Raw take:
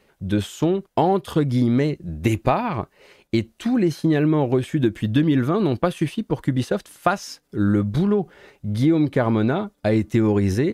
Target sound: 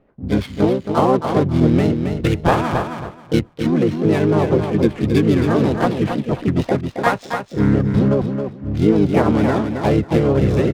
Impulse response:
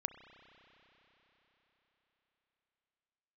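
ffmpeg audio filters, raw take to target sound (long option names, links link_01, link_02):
-filter_complex "[0:a]asplit=4[link_01][link_02][link_03][link_04];[link_02]asetrate=29433,aresample=44100,atempo=1.49831,volume=-4dB[link_05];[link_03]asetrate=58866,aresample=44100,atempo=0.749154,volume=-3dB[link_06];[link_04]asetrate=66075,aresample=44100,atempo=0.66742,volume=-10dB[link_07];[link_01][link_05][link_06][link_07]amix=inputs=4:normalize=0,adynamicsmooth=sensitivity=6:basefreq=980,aecho=1:1:270|540|810:0.473|0.0946|0.0189"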